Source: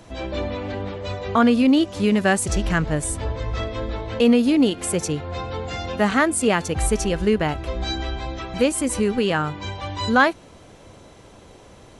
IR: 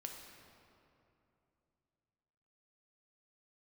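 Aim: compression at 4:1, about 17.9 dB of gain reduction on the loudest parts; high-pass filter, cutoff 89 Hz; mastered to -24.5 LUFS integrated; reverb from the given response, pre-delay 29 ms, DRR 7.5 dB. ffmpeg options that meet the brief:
-filter_complex "[0:a]highpass=89,acompressor=threshold=-35dB:ratio=4,asplit=2[a][b];[1:a]atrim=start_sample=2205,adelay=29[c];[b][c]afir=irnorm=-1:irlink=0,volume=-4.5dB[d];[a][d]amix=inputs=2:normalize=0,volume=10.5dB"

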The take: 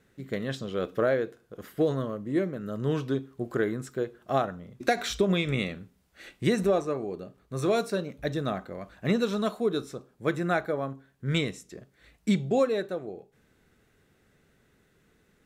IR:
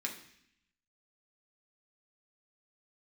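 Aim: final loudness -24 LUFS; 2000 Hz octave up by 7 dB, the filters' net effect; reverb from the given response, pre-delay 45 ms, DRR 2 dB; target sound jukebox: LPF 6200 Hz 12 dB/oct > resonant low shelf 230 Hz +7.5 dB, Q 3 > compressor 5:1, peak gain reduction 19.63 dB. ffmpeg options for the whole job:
-filter_complex "[0:a]equalizer=f=2k:t=o:g=9,asplit=2[a][b];[1:a]atrim=start_sample=2205,adelay=45[c];[b][c]afir=irnorm=-1:irlink=0,volume=-4dB[d];[a][d]amix=inputs=2:normalize=0,lowpass=6.2k,lowshelf=f=230:t=q:w=3:g=7.5,acompressor=threshold=-29dB:ratio=5,volume=9dB"

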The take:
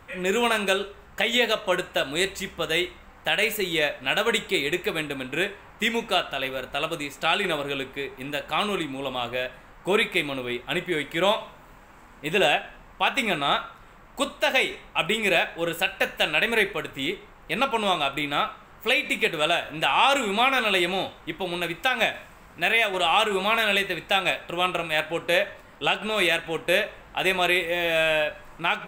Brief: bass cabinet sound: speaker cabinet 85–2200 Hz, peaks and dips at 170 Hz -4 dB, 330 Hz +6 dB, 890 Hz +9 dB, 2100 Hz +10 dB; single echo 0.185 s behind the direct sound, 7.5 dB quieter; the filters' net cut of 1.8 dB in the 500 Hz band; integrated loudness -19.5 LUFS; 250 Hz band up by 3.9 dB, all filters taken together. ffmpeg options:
-af "highpass=f=85:w=0.5412,highpass=f=85:w=1.3066,equalizer=f=170:t=q:w=4:g=-4,equalizer=f=330:t=q:w=4:g=6,equalizer=f=890:t=q:w=4:g=9,equalizer=f=2.1k:t=q:w=4:g=10,lowpass=f=2.2k:w=0.5412,lowpass=f=2.2k:w=1.3066,equalizer=f=250:t=o:g=5,equalizer=f=500:t=o:g=-6.5,aecho=1:1:185:0.422,volume=3.5dB"

